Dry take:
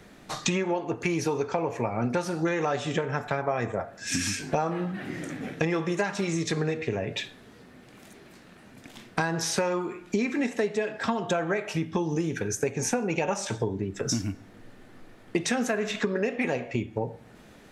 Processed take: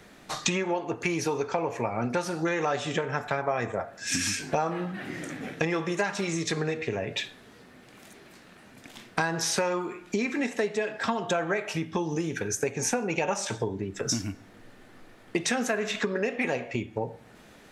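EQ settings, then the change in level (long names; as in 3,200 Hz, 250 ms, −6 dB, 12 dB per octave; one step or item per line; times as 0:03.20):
low-shelf EQ 440 Hz −5 dB
+1.5 dB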